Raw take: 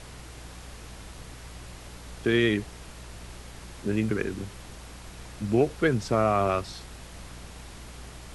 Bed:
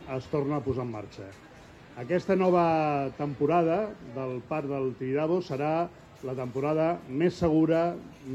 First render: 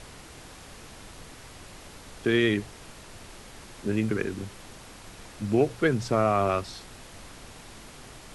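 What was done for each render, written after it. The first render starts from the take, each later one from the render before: de-hum 60 Hz, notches 3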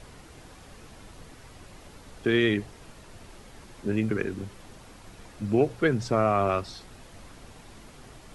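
noise reduction 6 dB, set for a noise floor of -47 dBFS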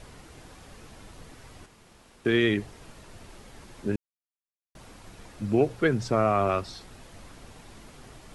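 1.66–2.25 s: room tone; 3.96–4.75 s: mute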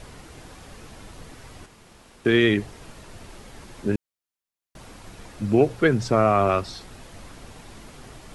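trim +4.5 dB

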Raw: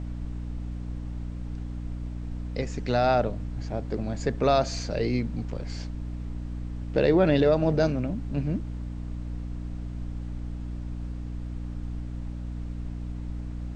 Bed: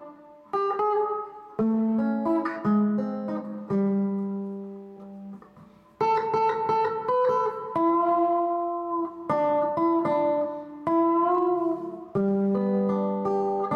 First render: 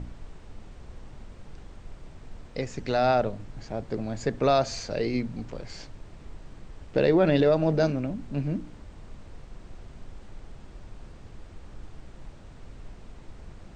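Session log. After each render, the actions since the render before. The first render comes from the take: de-hum 60 Hz, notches 5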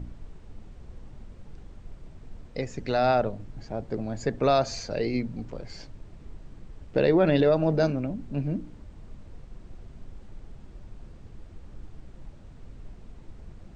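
noise reduction 6 dB, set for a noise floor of -47 dBFS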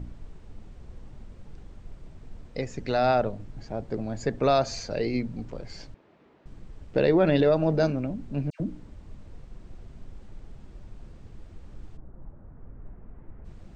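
5.94–6.46 s: band-pass 340–2900 Hz; 8.50–9.10 s: phase dispersion lows, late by 99 ms, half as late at 1.7 kHz; 11.96–13.44 s: low-pass 1.3 kHz -> 2 kHz 24 dB/octave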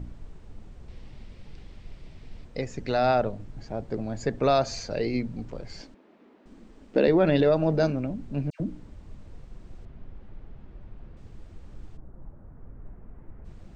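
0.88–2.45 s: high-order bell 3.2 kHz +8 dB; 5.81–7.08 s: resonant low shelf 170 Hz -10 dB, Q 3; 9.85–11.17 s: low-pass 2.8 kHz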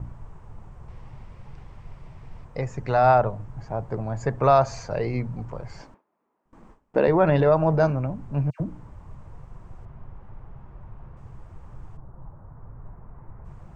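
gate with hold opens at -39 dBFS; graphic EQ 125/250/1000/4000 Hz +9/-6/+12/-9 dB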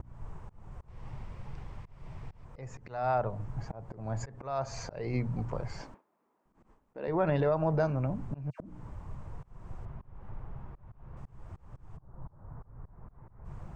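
compression 3:1, threshold -27 dBFS, peak gain reduction 11 dB; slow attack 270 ms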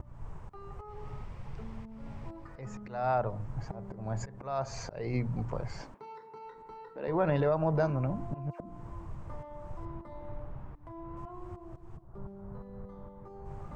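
add bed -24 dB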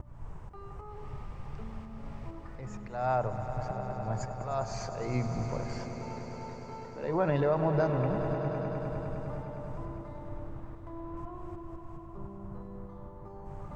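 echo with a slow build-up 102 ms, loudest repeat 5, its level -13 dB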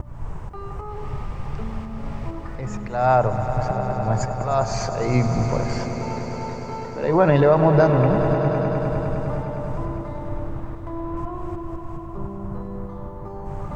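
trim +12 dB

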